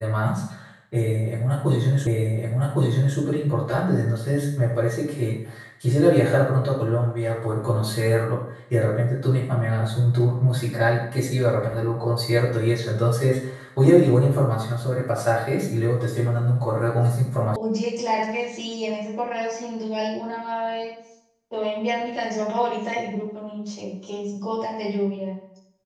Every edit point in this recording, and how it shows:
0:02.07: the same again, the last 1.11 s
0:17.56: cut off before it has died away

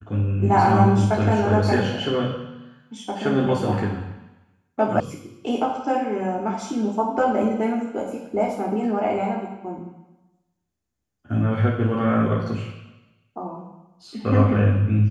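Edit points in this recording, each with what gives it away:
0:05.00: cut off before it has died away

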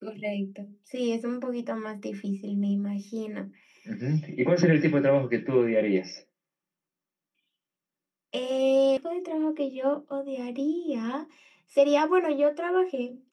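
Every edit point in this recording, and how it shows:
0:08.97: cut off before it has died away

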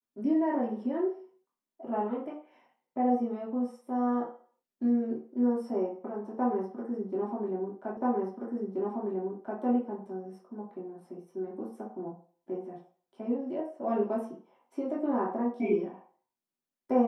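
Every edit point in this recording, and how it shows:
0:07.97: the same again, the last 1.63 s

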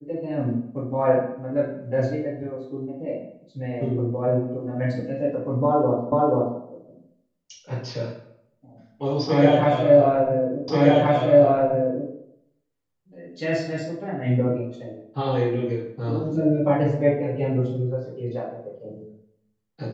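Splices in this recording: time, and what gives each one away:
0:06.12: the same again, the last 0.48 s
0:10.68: the same again, the last 1.43 s

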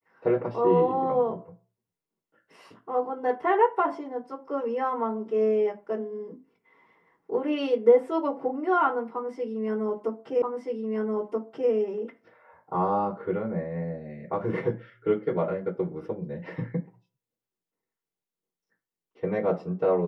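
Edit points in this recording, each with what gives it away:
0:10.42: the same again, the last 1.28 s

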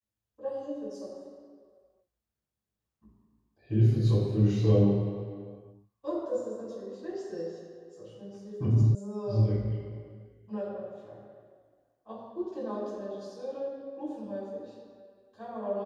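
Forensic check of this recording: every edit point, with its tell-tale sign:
0:08.95: cut off before it has died away

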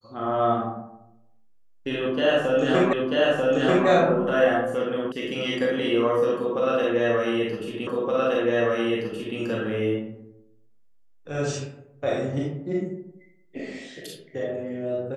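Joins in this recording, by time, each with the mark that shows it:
0:02.93: the same again, the last 0.94 s
0:05.12: cut off before it has died away
0:07.87: the same again, the last 1.52 s

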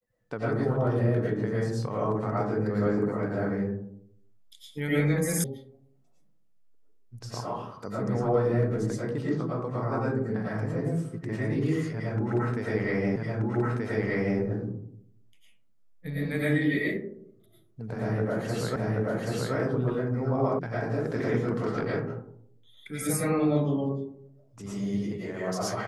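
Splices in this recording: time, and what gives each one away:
0:05.44: cut off before it has died away
0:13.16: the same again, the last 1.23 s
0:18.76: the same again, the last 0.78 s
0:20.59: cut off before it has died away

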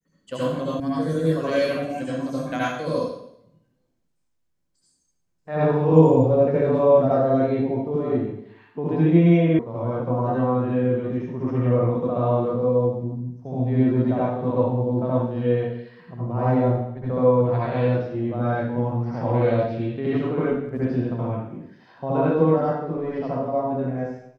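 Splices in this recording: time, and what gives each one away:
0:00.80: cut off before it has died away
0:09.59: cut off before it has died away

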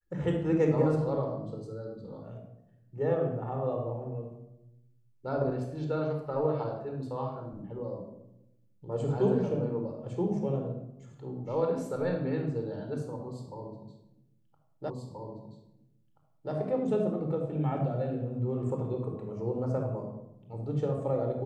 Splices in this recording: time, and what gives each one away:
0:14.90: the same again, the last 1.63 s

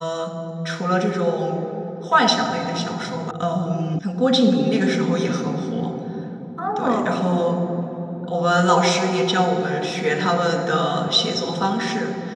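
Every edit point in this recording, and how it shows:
0:03.31: cut off before it has died away
0:03.99: cut off before it has died away

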